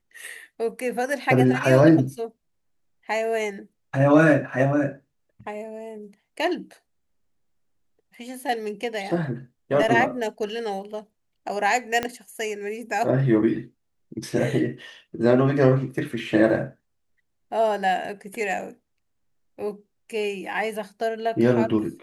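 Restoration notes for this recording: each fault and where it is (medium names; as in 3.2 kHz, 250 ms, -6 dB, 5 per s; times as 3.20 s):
12.03 s: pop -11 dBFS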